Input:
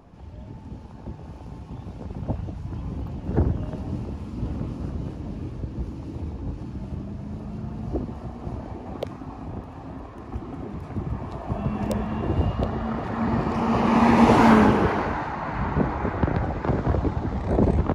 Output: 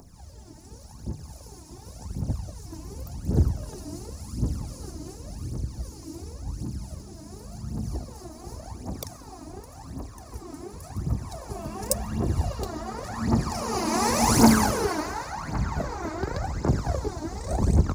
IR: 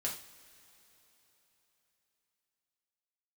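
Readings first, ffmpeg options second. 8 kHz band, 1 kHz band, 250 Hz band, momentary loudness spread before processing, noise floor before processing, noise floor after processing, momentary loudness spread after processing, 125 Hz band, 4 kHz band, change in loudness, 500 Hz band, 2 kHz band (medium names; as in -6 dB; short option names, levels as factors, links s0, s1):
no reading, -4.5 dB, -4.5 dB, 19 LU, -40 dBFS, -46 dBFS, 18 LU, -2.0 dB, +5.0 dB, -3.0 dB, -5.0 dB, -4.5 dB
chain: -af "aexciter=amount=8.7:drive=8:freq=4700,aphaser=in_gain=1:out_gain=1:delay=3.3:decay=0.72:speed=0.9:type=triangular,volume=0.422"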